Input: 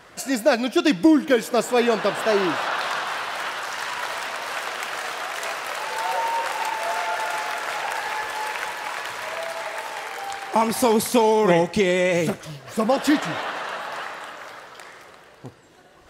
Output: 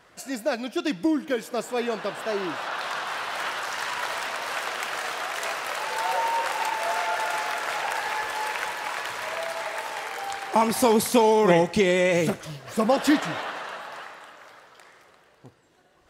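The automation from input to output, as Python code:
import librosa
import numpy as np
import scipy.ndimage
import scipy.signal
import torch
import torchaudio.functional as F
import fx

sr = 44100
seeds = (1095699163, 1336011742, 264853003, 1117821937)

y = fx.gain(x, sr, db=fx.line((2.4, -8.0), (3.45, -1.0), (13.09, -1.0), (14.26, -9.5)))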